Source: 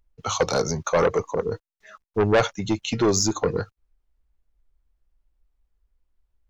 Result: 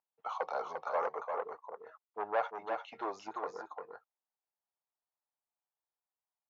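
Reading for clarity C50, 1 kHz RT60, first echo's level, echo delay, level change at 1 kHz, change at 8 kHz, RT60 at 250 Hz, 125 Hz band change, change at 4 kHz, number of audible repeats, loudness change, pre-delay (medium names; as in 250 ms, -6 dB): no reverb, no reverb, -5.5 dB, 347 ms, -7.0 dB, no reading, no reverb, under -40 dB, -26.0 dB, 1, -15.0 dB, no reverb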